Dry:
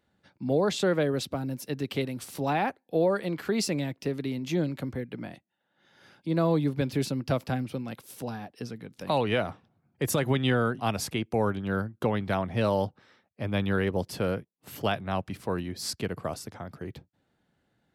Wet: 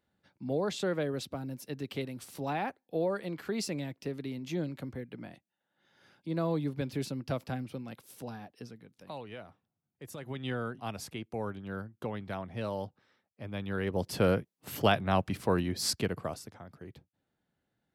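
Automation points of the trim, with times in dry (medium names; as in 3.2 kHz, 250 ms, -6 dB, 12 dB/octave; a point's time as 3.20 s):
8.51 s -6.5 dB
9.28 s -18.5 dB
10.11 s -18.5 dB
10.52 s -10 dB
13.64 s -10 dB
14.23 s +2.5 dB
15.91 s +2.5 dB
16.61 s -9 dB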